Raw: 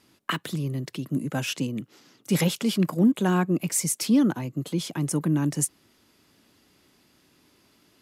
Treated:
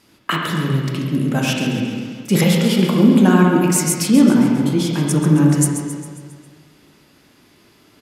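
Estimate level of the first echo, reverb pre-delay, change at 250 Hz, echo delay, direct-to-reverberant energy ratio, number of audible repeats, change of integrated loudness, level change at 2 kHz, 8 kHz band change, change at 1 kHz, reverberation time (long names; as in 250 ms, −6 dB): −10.0 dB, 7 ms, +10.5 dB, 135 ms, −2.0 dB, 2, +9.5 dB, +10.0 dB, +6.5 dB, +10.0 dB, 1.9 s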